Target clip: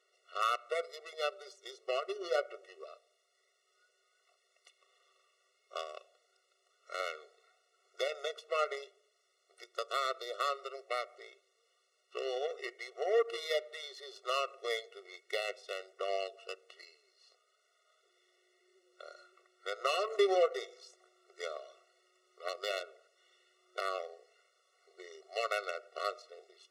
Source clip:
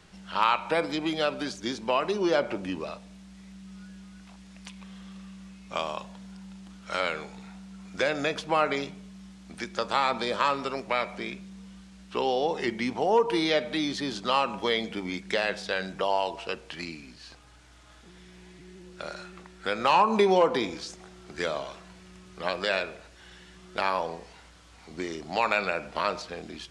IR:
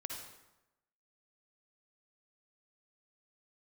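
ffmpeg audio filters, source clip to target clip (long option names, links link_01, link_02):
-af "aeval=exprs='0.335*(cos(1*acos(clip(val(0)/0.335,-1,1)))-cos(1*PI/2))+0.0299*(cos(7*acos(clip(val(0)/0.335,-1,1)))-cos(7*PI/2))':channel_layout=same,afftfilt=real='re*eq(mod(floor(b*sr/1024/370),2),1)':imag='im*eq(mod(floor(b*sr/1024/370),2),1)':win_size=1024:overlap=0.75,volume=-5dB"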